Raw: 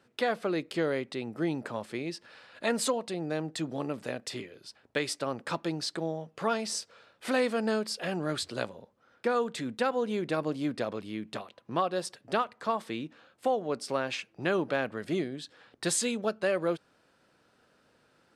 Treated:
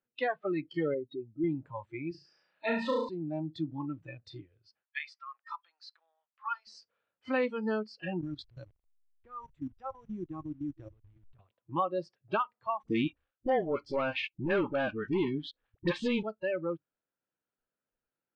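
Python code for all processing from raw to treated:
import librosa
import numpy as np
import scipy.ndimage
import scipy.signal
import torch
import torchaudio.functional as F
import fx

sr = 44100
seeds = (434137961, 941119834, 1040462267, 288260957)

y = fx.chain(x, sr, fx.spec_expand(power=2.2),
    fx.lowpass(hz=5600.0, slope=12), at=(0.94, 1.44))
y = fx.chain(y, sr, fx.highpass(hz=160.0, slope=6),
    fx.room_flutter(wall_m=6.0, rt60_s=0.96), at=(2.11, 3.09))
y = fx.chain(y, sr, fx.highpass(hz=1100.0, slope=24),
    fx.tilt_shelf(db=3.5, hz=1400.0), at=(4.83, 6.67))
y = fx.chain(y, sr, fx.delta_hold(step_db=-37.0),
    fx.level_steps(step_db=17), at=(8.21, 11.39))
y = fx.chain(y, sr, fx.leveller(passes=3),
    fx.dispersion(late='highs', ms=50.0, hz=630.0), at=(12.83, 16.23))
y = fx.noise_reduce_blind(y, sr, reduce_db=25)
y = scipy.signal.sosfilt(scipy.signal.butter(4, 3200.0, 'lowpass', fs=sr, output='sos'), y)
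y = fx.rider(y, sr, range_db=4, speed_s=0.5)
y = y * 10.0 ** (-4.0 / 20.0)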